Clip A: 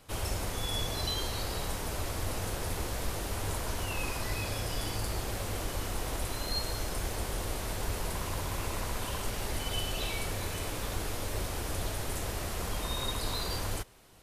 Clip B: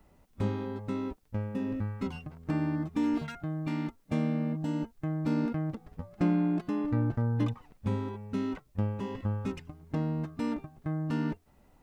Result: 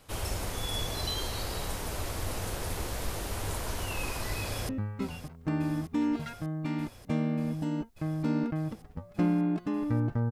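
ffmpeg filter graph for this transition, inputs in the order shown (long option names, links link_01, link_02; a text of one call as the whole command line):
ffmpeg -i cue0.wav -i cue1.wav -filter_complex "[0:a]apad=whole_dur=10.31,atrim=end=10.31,atrim=end=4.692[link_01];[1:a]atrim=start=1.708:end=7.33[link_02];[link_01][link_02]acrossfade=duration=0.004:curve1=hsin:curve2=hsin,asplit=2[link_03][link_04];[link_04]afade=type=in:start_time=4.42:duration=0.01,afade=type=out:start_time=4.69:duration=0.01,aecho=0:1:590|1180|1770|2360|2950|3540|4130|4720|5310|5900|6490|7080:0.223872|0.190291|0.161748|0.137485|0.116863|0.0993332|0.0844333|0.0717683|0.061003|0.0518526|0.0440747|0.0374635[link_05];[link_03][link_05]amix=inputs=2:normalize=0" out.wav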